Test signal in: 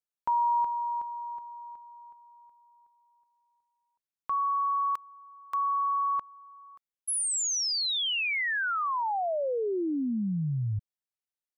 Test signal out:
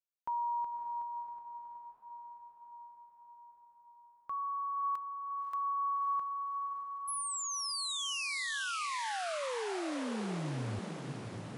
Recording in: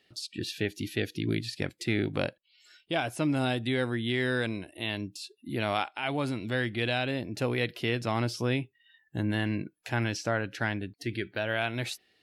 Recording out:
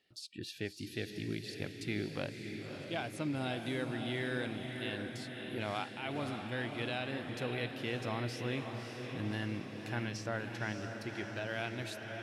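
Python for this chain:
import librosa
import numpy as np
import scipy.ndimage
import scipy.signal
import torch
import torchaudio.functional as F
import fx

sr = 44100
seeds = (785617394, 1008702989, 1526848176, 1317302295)

y = fx.echo_diffused(x, sr, ms=581, feedback_pct=66, wet_db=-6.0)
y = y * librosa.db_to_amplitude(-9.0)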